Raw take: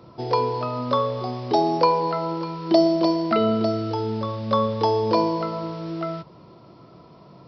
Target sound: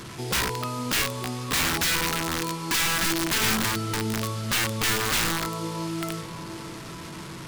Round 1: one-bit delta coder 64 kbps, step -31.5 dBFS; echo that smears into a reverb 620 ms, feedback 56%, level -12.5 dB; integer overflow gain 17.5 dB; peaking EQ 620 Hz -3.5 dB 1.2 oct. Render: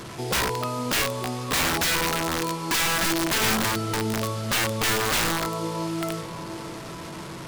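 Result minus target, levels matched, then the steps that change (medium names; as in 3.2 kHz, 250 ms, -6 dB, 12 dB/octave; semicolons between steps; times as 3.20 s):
500 Hz band +3.5 dB
change: peaking EQ 620 Hz -10 dB 1.2 oct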